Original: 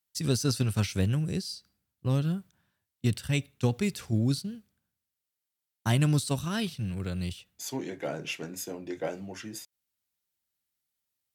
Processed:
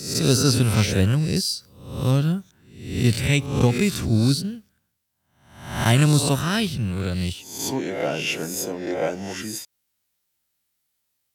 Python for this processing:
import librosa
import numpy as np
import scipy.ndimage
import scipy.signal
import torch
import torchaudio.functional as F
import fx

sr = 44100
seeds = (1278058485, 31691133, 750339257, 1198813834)

y = fx.spec_swells(x, sr, rise_s=0.67)
y = fx.high_shelf(y, sr, hz=5800.0, db=8.5, at=(1.36, 2.11))
y = y * librosa.db_to_amplitude(7.0)